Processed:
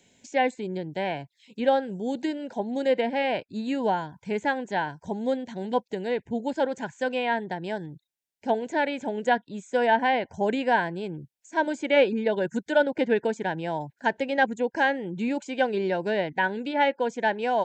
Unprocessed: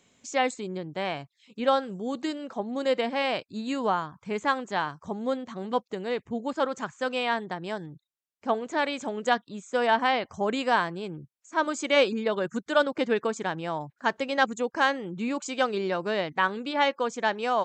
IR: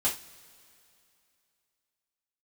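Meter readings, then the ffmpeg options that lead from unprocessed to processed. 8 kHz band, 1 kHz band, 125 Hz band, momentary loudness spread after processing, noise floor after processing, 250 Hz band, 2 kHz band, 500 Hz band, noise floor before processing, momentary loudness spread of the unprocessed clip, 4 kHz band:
can't be measured, +0.5 dB, +2.5 dB, 8 LU, −77 dBFS, +2.5 dB, +1.0 dB, +2.0 dB, −77 dBFS, 9 LU, −3.5 dB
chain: -filter_complex "[0:a]acrossover=split=480|2800[link_01][link_02][link_03];[link_02]asuperstop=centerf=1200:order=8:qfactor=2.9[link_04];[link_03]acompressor=threshold=-51dB:ratio=6[link_05];[link_01][link_04][link_05]amix=inputs=3:normalize=0,volume=2.5dB"

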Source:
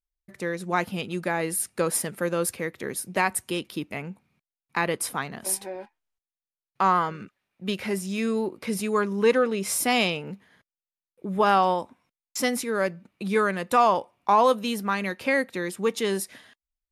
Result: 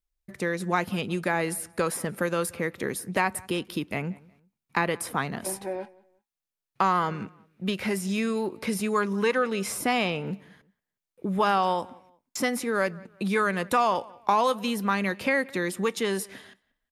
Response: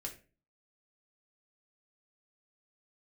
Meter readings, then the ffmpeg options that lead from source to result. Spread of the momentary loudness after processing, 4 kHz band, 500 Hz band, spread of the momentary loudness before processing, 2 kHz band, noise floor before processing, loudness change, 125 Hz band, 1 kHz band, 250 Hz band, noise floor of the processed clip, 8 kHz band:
10 LU, −2.0 dB, −2.5 dB, 13 LU, 0.0 dB, below −85 dBFS, −2.0 dB, +1.5 dB, −2.0 dB, 0.0 dB, below −85 dBFS, −5.0 dB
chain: -filter_complex "[0:a]acrossover=split=790|2000[link_01][link_02][link_03];[link_01]acompressor=threshold=-31dB:ratio=4[link_04];[link_02]acompressor=threshold=-27dB:ratio=4[link_05];[link_03]acompressor=threshold=-36dB:ratio=4[link_06];[link_04][link_05][link_06]amix=inputs=3:normalize=0,lowshelf=frequency=360:gain=3.5,asplit=2[link_07][link_08];[link_08]adelay=181,lowpass=frequency=3400:poles=1,volume=-23dB,asplit=2[link_09][link_10];[link_10]adelay=181,lowpass=frequency=3400:poles=1,volume=0.31[link_11];[link_07][link_09][link_11]amix=inputs=3:normalize=0,volume=2.5dB"

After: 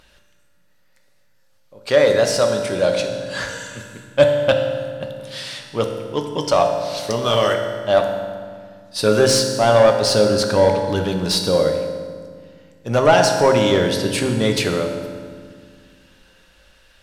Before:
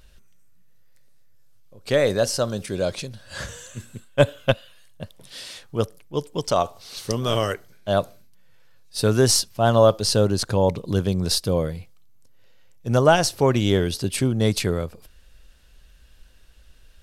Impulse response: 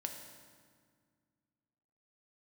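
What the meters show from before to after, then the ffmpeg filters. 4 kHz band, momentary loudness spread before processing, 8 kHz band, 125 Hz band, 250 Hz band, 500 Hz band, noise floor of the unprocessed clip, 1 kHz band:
+4.5 dB, 19 LU, +1.0 dB, −1.5 dB, +2.5 dB, +6.0 dB, −51 dBFS, +5.5 dB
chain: -filter_complex "[0:a]asplit=2[link_01][link_02];[link_02]highpass=frequency=720:poles=1,volume=16dB,asoftclip=type=tanh:threshold=-3dB[link_03];[link_01][link_03]amix=inputs=2:normalize=0,lowpass=frequency=3100:poles=1,volume=-6dB[link_04];[1:a]atrim=start_sample=2205,asetrate=42336,aresample=44100[link_05];[link_04][link_05]afir=irnorm=-1:irlink=0,volume=1dB"

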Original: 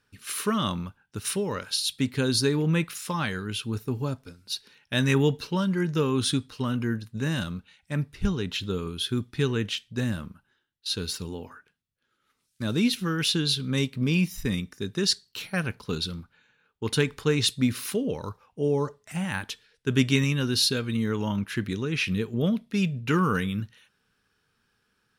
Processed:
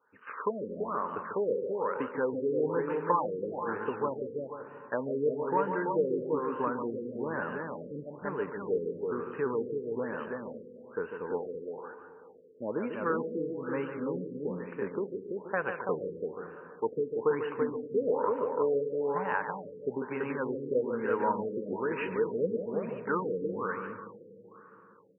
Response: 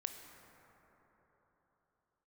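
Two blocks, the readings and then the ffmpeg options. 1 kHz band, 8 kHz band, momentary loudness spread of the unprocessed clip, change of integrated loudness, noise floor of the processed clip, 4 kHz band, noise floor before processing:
+3.0 dB, below −40 dB, 11 LU, −5.5 dB, −53 dBFS, below −30 dB, −74 dBFS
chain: -filter_complex "[0:a]highshelf=frequency=2200:width_type=q:width=1.5:gain=-13,acompressor=threshold=-25dB:ratio=6,highpass=390,equalizer=frequency=490:width_type=q:width=4:gain=9,equalizer=frequency=950:width_type=q:width=4:gain=9,equalizer=frequency=2100:width_type=q:width=4:gain=-3,lowpass=frequency=7300:width=0.5412,lowpass=frequency=7300:width=1.3066,aecho=1:1:334:0.631,asplit=2[link_01][link_02];[1:a]atrim=start_sample=2205,adelay=146[link_03];[link_02][link_03]afir=irnorm=-1:irlink=0,volume=-5dB[link_04];[link_01][link_04]amix=inputs=2:normalize=0,afftfilt=real='re*lt(b*sr/1024,540*pow(3100/540,0.5+0.5*sin(2*PI*1.1*pts/sr)))':imag='im*lt(b*sr/1024,540*pow(3100/540,0.5+0.5*sin(2*PI*1.1*pts/sr)))':win_size=1024:overlap=0.75"

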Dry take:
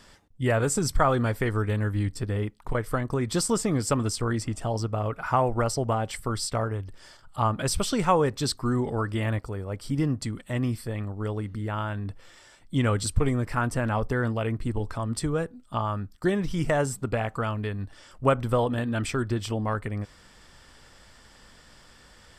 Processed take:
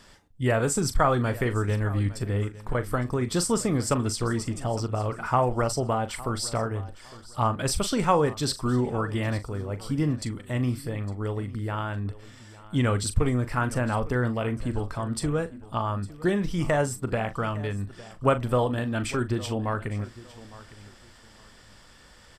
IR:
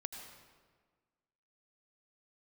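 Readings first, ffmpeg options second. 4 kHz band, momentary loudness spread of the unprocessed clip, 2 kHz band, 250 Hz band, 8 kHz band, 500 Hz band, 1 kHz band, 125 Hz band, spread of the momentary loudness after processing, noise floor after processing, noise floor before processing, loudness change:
+0.5 dB, 8 LU, 0.0 dB, +0.5 dB, +0.5 dB, +0.5 dB, +0.5 dB, +0.5 dB, 9 LU, −52 dBFS, −54 dBFS, +0.5 dB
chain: -filter_complex "[0:a]asplit=2[link_01][link_02];[link_02]adelay=40,volume=-12dB[link_03];[link_01][link_03]amix=inputs=2:normalize=0,aecho=1:1:858|1716:0.119|0.0309"

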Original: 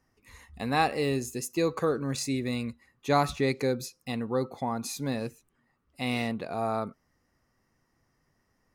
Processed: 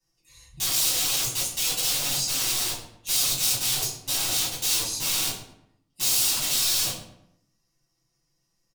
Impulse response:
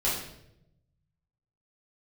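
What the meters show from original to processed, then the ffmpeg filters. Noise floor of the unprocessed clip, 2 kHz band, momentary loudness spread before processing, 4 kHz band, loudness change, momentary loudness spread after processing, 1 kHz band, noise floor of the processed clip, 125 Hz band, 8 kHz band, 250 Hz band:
−74 dBFS, +1.5 dB, 9 LU, +15.5 dB, +7.5 dB, 7 LU, −8.5 dB, −75 dBFS, −6.5 dB, +19.0 dB, −13.5 dB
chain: -filter_complex "[0:a]afwtdn=0.02,highshelf=frequency=9900:gain=-9.5,aecho=1:1:5.9:0.96,alimiter=limit=-20dB:level=0:latency=1:release=60,acrossover=split=150|3000[link_01][link_02][link_03];[link_02]acompressor=threshold=-33dB:ratio=5[link_04];[link_01][link_04][link_03]amix=inputs=3:normalize=0,aeval=exprs='(mod(75*val(0)+1,2)-1)/75':channel_layout=same,aexciter=amount=5.3:drive=7.4:freq=2700,asplit=2[link_05][link_06];[link_06]adelay=110,lowpass=frequency=2700:poles=1,volume=-11dB,asplit=2[link_07][link_08];[link_08]adelay=110,lowpass=frequency=2700:poles=1,volume=0.41,asplit=2[link_09][link_10];[link_10]adelay=110,lowpass=frequency=2700:poles=1,volume=0.41,asplit=2[link_11][link_12];[link_12]adelay=110,lowpass=frequency=2700:poles=1,volume=0.41[link_13];[link_05][link_07][link_09][link_11][link_13]amix=inputs=5:normalize=0[link_14];[1:a]atrim=start_sample=2205,asetrate=83790,aresample=44100[link_15];[link_14][link_15]afir=irnorm=-1:irlink=0"

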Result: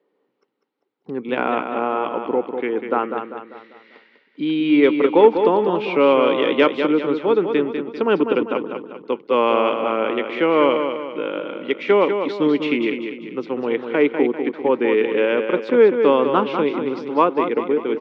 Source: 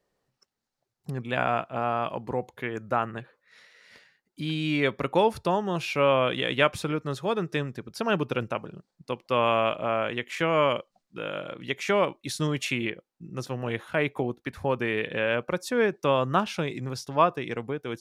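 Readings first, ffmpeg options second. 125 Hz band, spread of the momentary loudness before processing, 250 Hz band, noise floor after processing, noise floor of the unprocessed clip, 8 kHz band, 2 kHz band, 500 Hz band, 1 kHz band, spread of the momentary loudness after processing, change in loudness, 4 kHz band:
−5.5 dB, 11 LU, +11.0 dB, −69 dBFS, −83 dBFS, below −15 dB, +3.5 dB, +10.0 dB, +6.0 dB, 11 LU, +8.5 dB, +2.5 dB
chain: -af "highpass=frequency=240:width=0.5412,highpass=frequency=240:width=1.3066,equalizer=frequency=290:width_type=q:width=4:gain=5,equalizer=frequency=440:width_type=q:width=4:gain=5,equalizer=frequency=660:width_type=q:width=4:gain=-10,equalizer=frequency=1200:width_type=q:width=4:gain=-4,equalizer=frequency=1700:width_type=q:width=4:gain=-9,equalizer=frequency=2600:width_type=q:width=4:gain=-5,lowpass=frequency=2900:width=0.5412,lowpass=frequency=2900:width=1.3066,acontrast=53,aecho=1:1:197|394|591|788|985:0.447|0.197|0.0865|0.0381|0.0167,volume=3dB"

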